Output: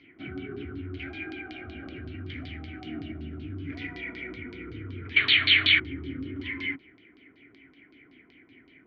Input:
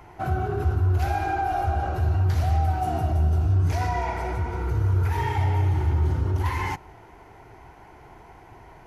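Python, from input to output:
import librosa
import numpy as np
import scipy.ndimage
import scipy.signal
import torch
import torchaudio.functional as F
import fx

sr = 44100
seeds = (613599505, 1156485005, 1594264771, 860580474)

y = fx.spec_paint(x, sr, seeds[0], shape='noise', start_s=5.16, length_s=0.64, low_hz=600.0, high_hz=4500.0, level_db=-20.0)
y = fx.filter_lfo_lowpass(y, sr, shape='saw_down', hz=5.3, low_hz=960.0, high_hz=4700.0, q=4.1)
y = fx.vowel_filter(y, sr, vowel='i')
y = y * 10.0 ** (6.5 / 20.0)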